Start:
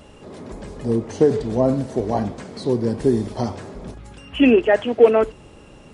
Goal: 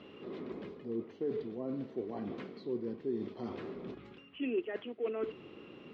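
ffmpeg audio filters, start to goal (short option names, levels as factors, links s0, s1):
-af "equalizer=f=1700:t=o:w=0.41:g=-9.5,areverse,acompressor=threshold=0.0251:ratio=4,areverse,highpass=210,equalizer=f=360:t=q:w=4:g=4,equalizer=f=610:t=q:w=4:g=-8,equalizer=f=860:t=q:w=4:g=-9,equalizer=f=1800:t=q:w=4:g=5,lowpass=f=3500:w=0.5412,lowpass=f=3500:w=1.3066,volume=0.668"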